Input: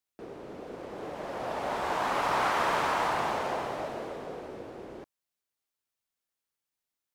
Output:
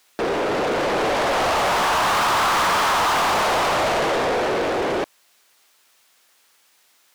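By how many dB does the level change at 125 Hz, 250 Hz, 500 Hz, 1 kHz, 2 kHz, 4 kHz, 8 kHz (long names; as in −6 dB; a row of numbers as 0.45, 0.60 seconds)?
+11.0, +12.0, +12.5, +11.0, +12.5, +16.5, +17.5 decibels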